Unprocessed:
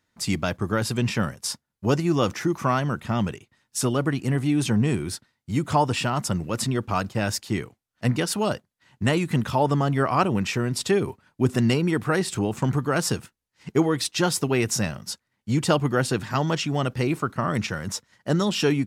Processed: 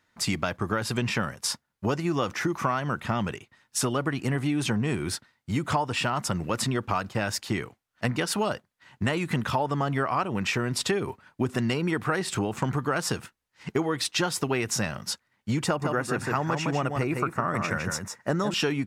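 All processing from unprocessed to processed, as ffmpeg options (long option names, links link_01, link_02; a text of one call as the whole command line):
ffmpeg -i in.wav -filter_complex "[0:a]asettb=1/sr,asplit=3[link_01][link_02][link_03];[link_01]atrim=end=15.664[link_04];[link_02]atrim=start=15.66:end=18.54,asetpts=PTS-STARTPTS,afade=type=in:duration=0.004:curve=qsin,afade=type=out:start_time=2.876:duration=0.004:curve=qsin,equalizer=frequency=4100:width=2.1:gain=-9,bandreject=frequency=3100:width=6.1,aecho=1:1:158:0.473,atrim=end_sample=127008[link_05];[link_03]atrim=start=18.536[link_06];[link_04][link_05]acrossfade=duration=0.004:curve1=hsin:curve2=qsin[link_07];[link_07][link_06]acrossfade=duration=0.004:curve1=qsin:curve2=hsin,equalizer=frequency=1400:width=0.44:gain=6.5,acompressor=threshold=-23dB:ratio=6" out.wav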